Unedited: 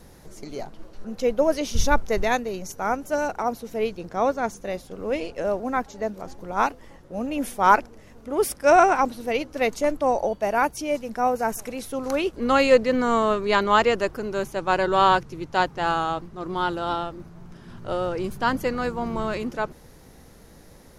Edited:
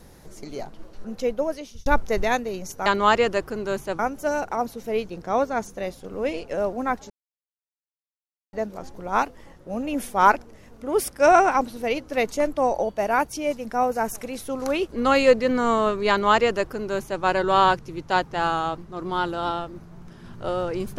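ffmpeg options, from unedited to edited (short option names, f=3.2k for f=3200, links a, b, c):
-filter_complex "[0:a]asplit=5[a][b][c][d][e];[a]atrim=end=1.86,asetpts=PTS-STARTPTS,afade=t=out:st=1.11:d=0.75[f];[b]atrim=start=1.86:end=2.862,asetpts=PTS-STARTPTS,afade=t=in:d=0.004:c=hsin[g];[c]atrim=start=13.528:end=14.662[h];[d]atrim=start=2.858:end=5.97,asetpts=PTS-STARTPTS,afade=t=out:st=3.108:d=0.004:c=hsin,apad=pad_dur=1.43[i];[e]atrim=start=5.97,asetpts=PTS-STARTPTS,afade=t=in:d=0.004:c=hsin[j];[f][g]concat=n=2:v=0:a=1[k];[k][h]acrossfade=d=0.004:c1=hsin:c2=hsin[l];[i][j]concat=n=2:v=0:a=1[m];[l][m]acrossfade=d=0.004:c1=hsin:c2=hsin"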